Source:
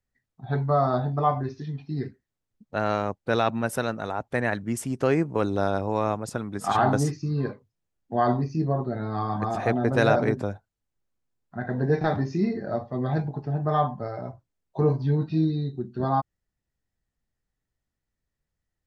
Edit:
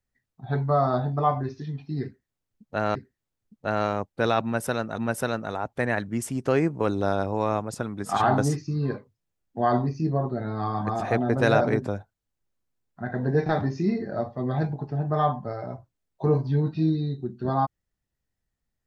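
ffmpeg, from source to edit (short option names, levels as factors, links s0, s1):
-filter_complex "[0:a]asplit=3[s0][s1][s2];[s0]atrim=end=2.952[s3];[s1]atrim=start=2.038:end=4.072[s4];[s2]atrim=start=3.528[s5];[s3][s4]acrossfade=d=0.004:c1=hsin:c2=hsin[s6];[s6][s5]acrossfade=d=0.004:c1=hsin:c2=hsin"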